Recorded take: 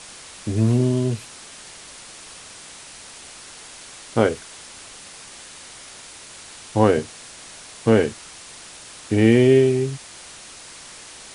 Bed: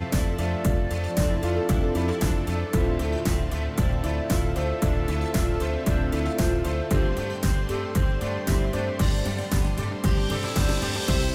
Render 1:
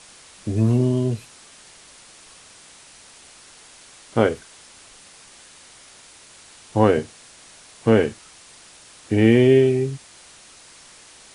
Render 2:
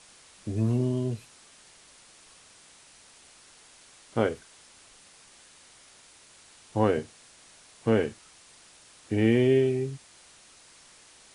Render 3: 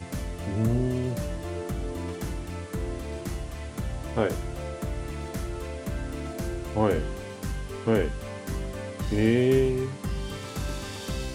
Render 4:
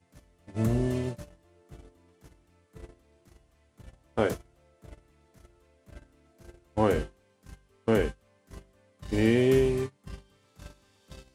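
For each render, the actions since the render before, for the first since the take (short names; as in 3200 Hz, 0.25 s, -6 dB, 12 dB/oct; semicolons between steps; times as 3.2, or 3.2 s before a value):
noise print and reduce 6 dB
gain -7.5 dB
add bed -9.5 dB
gate -27 dBFS, range -27 dB; low shelf 220 Hz -3 dB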